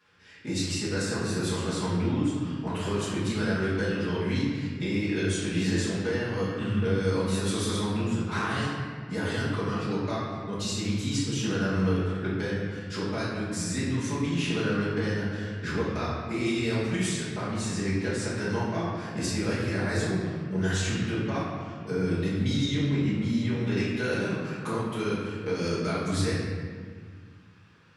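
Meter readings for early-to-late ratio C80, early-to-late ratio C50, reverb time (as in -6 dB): 1.0 dB, -1.0 dB, 1.8 s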